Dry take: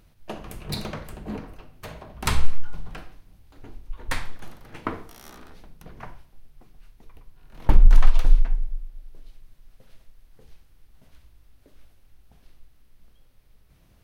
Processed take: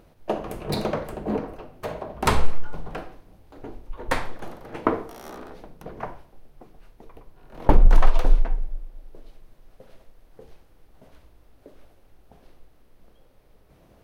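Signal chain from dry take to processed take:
parametric band 520 Hz +13.5 dB 2.6 octaves
level −1.5 dB

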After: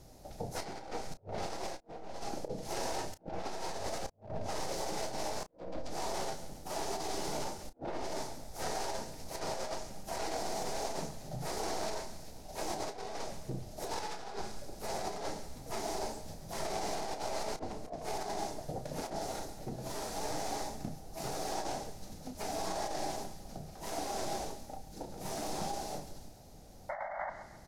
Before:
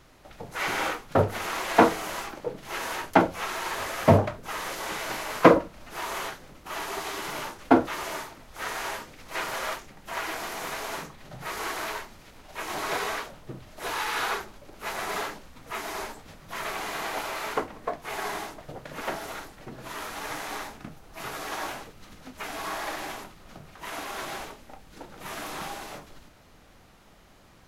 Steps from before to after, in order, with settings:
stylus tracing distortion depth 0.42 ms
high shelf with overshoot 6,600 Hz −9 dB, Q 1.5
sound drawn into the spectrogram noise, 0:26.89–0:27.30, 540–2,200 Hz −27 dBFS
feedback echo with a high-pass in the loop 137 ms, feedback 52%, high-pass 920 Hz, level −13 dB
on a send at −24 dB: convolution reverb RT60 1.4 s, pre-delay 85 ms
on the sum: treble cut that deepens with the level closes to 2,600 Hz, closed at −21 dBFS
drawn EQ curve 200 Hz 0 dB, 290 Hz −3 dB, 790 Hz 0 dB, 1,100 Hz −15 dB, 3,100 Hz −14 dB, 8,900 Hz +12 dB
compressor whose output falls as the input rises −37 dBFS, ratio −0.5
double-tracking delay 32 ms −11.5 dB
level −2.5 dB

